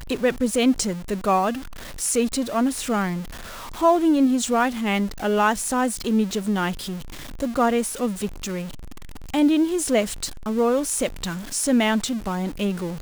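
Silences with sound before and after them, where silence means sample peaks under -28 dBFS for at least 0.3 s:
1.59–2
3.22–3.81
6.97–7.4
8.66–9.34

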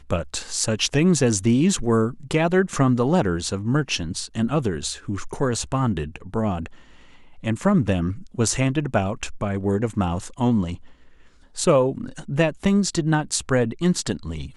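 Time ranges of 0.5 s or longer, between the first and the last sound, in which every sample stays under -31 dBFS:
6.66–7.44
10.75–11.56

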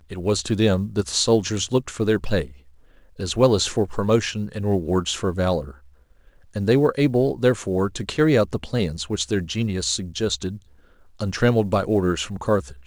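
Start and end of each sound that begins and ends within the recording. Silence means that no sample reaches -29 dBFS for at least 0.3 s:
3.2–5.71
6.56–10.56

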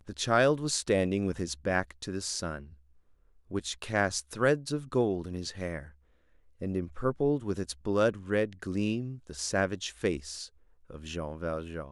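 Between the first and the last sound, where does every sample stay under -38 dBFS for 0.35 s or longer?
2.64–3.51
5.83–6.62
10.46–10.9

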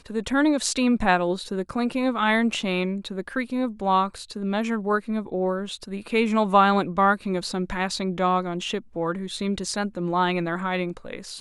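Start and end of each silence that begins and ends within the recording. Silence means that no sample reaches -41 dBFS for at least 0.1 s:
8.81–8.94

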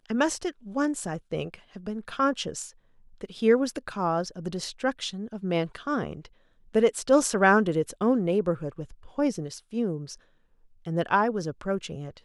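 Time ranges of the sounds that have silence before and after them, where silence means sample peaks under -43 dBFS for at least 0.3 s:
3.21–6.27
6.74–10.15

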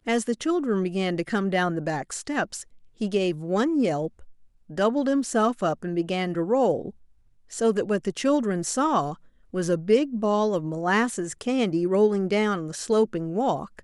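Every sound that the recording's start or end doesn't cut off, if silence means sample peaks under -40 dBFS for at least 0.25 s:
3–4.3
4.7–6.9
7.52–9.14

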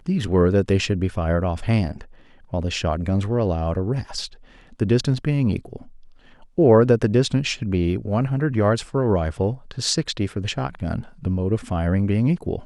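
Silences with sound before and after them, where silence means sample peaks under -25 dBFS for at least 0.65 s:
5.76–6.58

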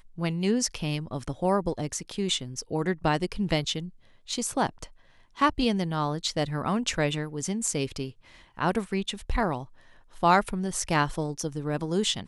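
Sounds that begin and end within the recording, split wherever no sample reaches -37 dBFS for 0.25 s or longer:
4.29–4.85
5.39–8.1
8.59–9.64

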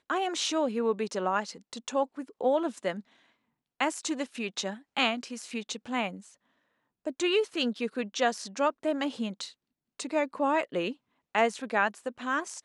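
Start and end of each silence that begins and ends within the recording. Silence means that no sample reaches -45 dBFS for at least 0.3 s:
3.01–3.8
6.29–7.05
9.52–9.99
10.93–11.35

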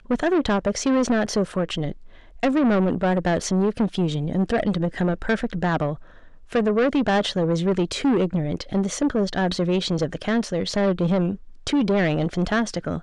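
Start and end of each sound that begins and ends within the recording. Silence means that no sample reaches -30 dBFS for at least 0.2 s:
2.43–5.95
6.53–11.35

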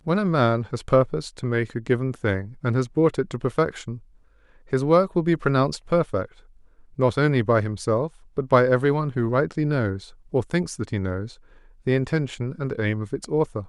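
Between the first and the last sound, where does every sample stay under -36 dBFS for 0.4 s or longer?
3.98–4.72
6.25–6.98
11.32–11.87

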